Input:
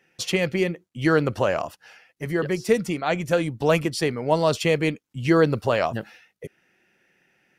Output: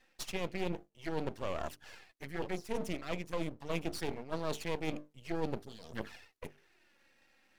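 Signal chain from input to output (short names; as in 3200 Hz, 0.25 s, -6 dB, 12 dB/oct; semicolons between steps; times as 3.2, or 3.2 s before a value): bell 120 Hz -12.5 dB 0.78 oct; notches 50/100/150/200/250/300/350/400/450 Hz; reverse; compressor 4:1, threshold -33 dBFS, peak gain reduction 16 dB; reverse; spectral gain 5.64–5.93, 500–3100 Hz -25 dB; in parallel at -11.5 dB: soft clip -32 dBFS, distortion -11 dB; on the sum: envelope flanger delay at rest 4 ms, full sweep at -29.5 dBFS; half-wave rectifier; gain +1 dB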